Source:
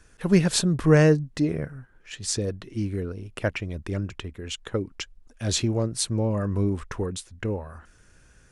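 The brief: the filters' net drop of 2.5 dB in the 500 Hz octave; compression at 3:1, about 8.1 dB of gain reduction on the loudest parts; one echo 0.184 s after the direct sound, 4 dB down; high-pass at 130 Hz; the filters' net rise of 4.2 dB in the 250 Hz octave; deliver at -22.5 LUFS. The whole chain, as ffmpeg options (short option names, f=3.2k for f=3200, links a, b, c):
-af "highpass=130,equalizer=f=250:t=o:g=9,equalizer=f=500:t=o:g=-6,acompressor=threshold=-21dB:ratio=3,aecho=1:1:184:0.631,volume=4dB"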